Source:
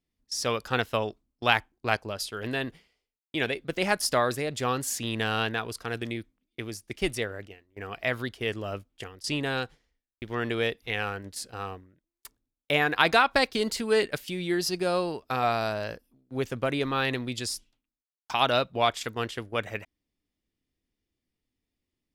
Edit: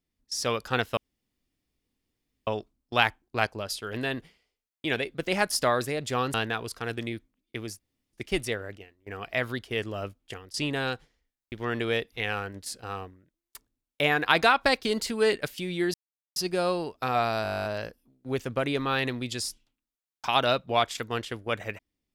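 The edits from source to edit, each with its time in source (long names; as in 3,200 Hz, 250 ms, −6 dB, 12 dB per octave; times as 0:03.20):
0:00.97: splice in room tone 1.50 s
0:04.84–0:05.38: remove
0:06.83: splice in room tone 0.34 s
0:14.64: splice in silence 0.42 s
0:15.71: stutter 0.02 s, 12 plays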